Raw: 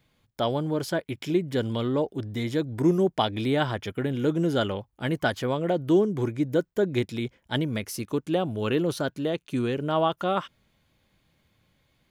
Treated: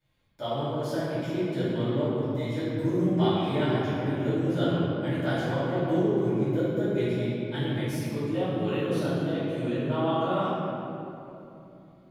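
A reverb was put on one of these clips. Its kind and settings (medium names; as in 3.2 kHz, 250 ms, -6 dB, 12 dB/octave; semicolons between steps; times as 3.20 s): simulated room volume 130 m³, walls hard, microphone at 2.6 m; trim -18.5 dB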